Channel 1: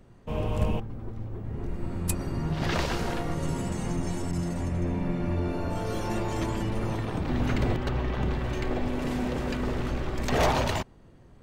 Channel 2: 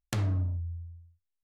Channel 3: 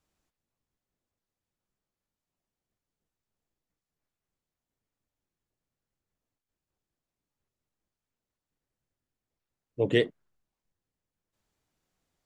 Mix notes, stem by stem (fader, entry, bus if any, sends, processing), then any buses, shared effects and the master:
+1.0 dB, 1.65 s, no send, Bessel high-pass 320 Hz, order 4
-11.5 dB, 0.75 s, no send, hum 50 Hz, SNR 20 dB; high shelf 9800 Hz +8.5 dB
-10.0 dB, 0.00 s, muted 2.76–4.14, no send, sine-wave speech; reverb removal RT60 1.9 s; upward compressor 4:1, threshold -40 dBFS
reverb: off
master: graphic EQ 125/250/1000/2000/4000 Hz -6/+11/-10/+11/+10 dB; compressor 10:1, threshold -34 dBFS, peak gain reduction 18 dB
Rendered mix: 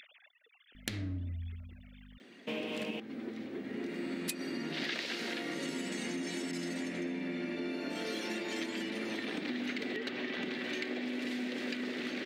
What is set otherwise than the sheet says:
stem 1: entry 1.65 s -> 2.20 s; stem 2 -11.5 dB -> -2.0 dB

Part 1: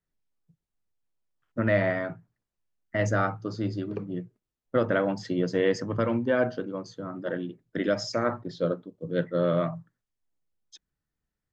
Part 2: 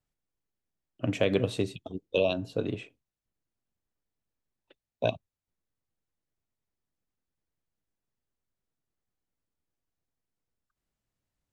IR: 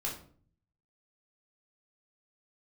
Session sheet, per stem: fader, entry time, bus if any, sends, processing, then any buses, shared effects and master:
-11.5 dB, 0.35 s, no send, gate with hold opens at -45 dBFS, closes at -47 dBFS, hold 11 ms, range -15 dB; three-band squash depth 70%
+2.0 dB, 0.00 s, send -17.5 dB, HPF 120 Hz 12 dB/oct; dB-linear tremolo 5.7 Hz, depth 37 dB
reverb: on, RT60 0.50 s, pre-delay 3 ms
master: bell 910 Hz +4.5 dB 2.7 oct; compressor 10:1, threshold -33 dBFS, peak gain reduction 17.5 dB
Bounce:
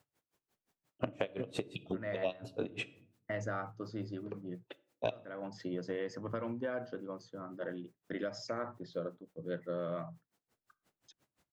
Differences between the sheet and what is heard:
stem 1: missing three-band squash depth 70%; stem 2 +2.0 dB -> +14.0 dB

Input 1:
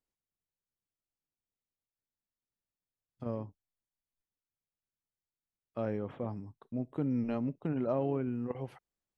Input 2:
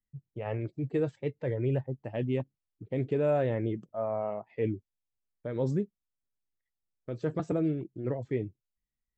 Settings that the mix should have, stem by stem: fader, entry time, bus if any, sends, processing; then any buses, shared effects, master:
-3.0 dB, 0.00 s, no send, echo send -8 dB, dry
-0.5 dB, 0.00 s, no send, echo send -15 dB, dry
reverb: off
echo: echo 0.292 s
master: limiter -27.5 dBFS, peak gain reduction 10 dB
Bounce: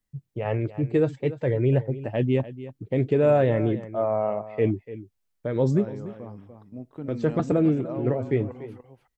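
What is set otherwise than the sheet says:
stem 2 -0.5 dB -> +7.5 dB; master: missing limiter -27.5 dBFS, peak gain reduction 10 dB

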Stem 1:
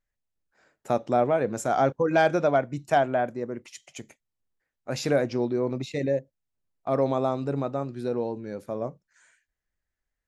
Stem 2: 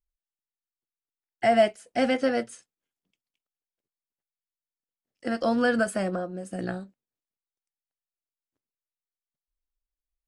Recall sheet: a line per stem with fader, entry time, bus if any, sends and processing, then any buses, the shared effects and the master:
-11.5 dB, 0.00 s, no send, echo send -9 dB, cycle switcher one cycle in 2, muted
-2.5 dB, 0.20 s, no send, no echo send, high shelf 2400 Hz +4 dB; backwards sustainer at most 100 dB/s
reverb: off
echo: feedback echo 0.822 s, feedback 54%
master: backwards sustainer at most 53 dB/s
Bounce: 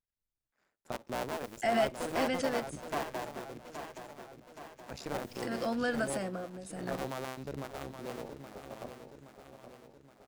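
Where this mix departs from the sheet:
stem 2 -2.5 dB -> -9.5 dB; master: missing backwards sustainer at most 53 dB/s

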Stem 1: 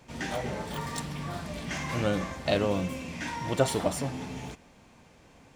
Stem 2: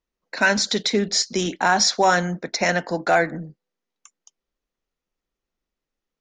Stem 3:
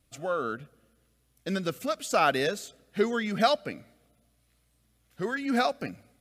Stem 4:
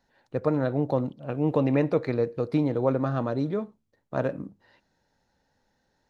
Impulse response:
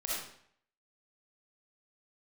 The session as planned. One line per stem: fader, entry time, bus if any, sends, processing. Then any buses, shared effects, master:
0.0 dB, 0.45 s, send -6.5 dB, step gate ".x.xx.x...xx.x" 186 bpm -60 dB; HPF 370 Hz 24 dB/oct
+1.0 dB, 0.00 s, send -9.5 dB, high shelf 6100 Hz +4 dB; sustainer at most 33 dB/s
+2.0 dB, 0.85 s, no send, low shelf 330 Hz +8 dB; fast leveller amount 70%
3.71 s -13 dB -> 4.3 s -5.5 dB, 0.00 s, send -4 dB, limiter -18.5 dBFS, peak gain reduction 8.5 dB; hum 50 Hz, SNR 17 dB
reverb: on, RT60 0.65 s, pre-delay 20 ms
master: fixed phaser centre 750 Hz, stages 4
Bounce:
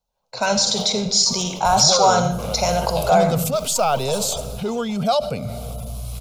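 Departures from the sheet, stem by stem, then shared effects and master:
stem 3: entry 0.85 s -> 1.65 s; stem 4: missing hum 50 Hz, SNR 17 dB

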